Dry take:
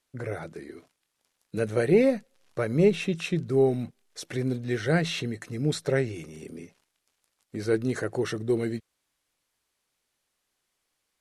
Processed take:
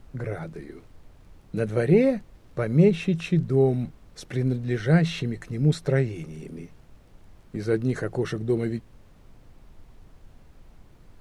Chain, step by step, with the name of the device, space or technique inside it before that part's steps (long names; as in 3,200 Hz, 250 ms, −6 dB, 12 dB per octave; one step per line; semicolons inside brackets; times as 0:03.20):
car interior (parametric band 150 Hz +8 dB 0.83 octaves; high-shelf EQ 4,600 Hz −6 dB; brown noise bed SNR 22 dB)